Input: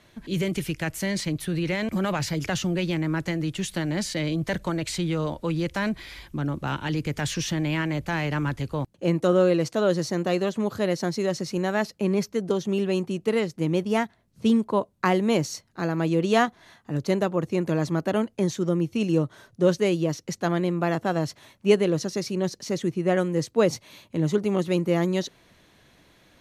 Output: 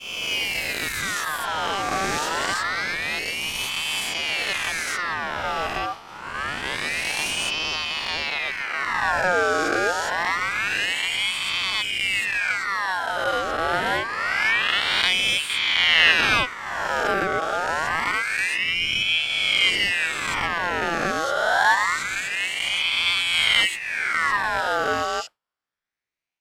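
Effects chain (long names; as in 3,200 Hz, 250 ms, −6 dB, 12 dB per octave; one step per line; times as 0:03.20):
peak hold with a rise ahead of every peak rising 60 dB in 2.91 s
0:15.49–0:16.12: parametric band 510 Hz +7.5 dB 2.9 octaves
downward expander −23 dBFS
ring modulator whose carrier an LFO sweeps 1,900 Hz, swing 50%, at 0.26 Hz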